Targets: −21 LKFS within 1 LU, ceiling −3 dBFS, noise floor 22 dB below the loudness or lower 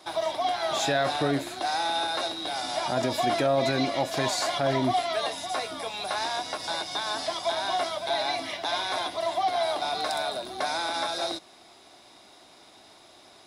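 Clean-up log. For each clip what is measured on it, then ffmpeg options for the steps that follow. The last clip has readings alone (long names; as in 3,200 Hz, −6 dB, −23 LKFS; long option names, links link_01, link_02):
integrated loudness −28.0 LKFS; sample peak −13.0 dBFS; target loudness −21.0 LKFS
→ -af "volume=7dB"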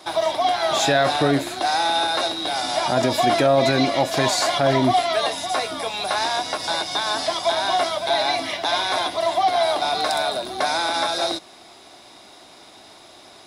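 integrated loudness −21.0 LKFS; sample peak −6.0 dBFS; background noise floor −47 dBFS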